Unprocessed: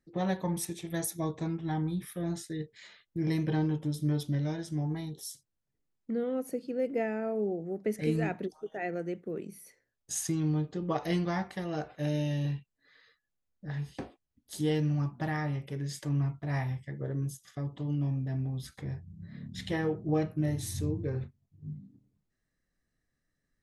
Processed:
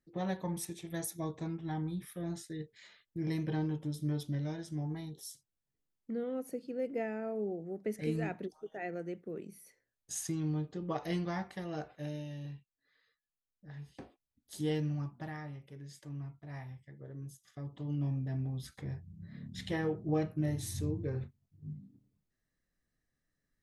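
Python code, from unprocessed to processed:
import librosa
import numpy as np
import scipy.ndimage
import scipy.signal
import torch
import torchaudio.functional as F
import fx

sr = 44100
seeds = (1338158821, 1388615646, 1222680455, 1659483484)

y = fx.gain(x, sr, db=fx.line((11.84, -5.0), (12.26, -12.0), (13.68, -12.0), (14.72, -4.0), (15.59, -13.0), (17.08, -13.0), (18.04, -3.0)))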